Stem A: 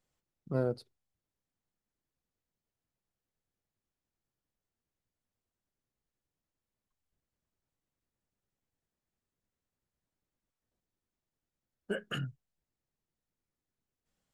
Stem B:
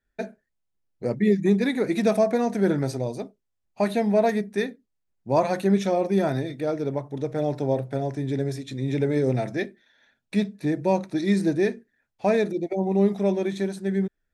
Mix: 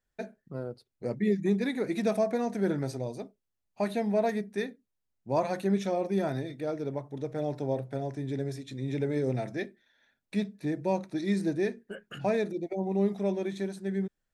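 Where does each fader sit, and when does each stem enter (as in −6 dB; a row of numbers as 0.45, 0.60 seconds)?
−6.0, −6.5 decibels; 0.00, 0.00 seconds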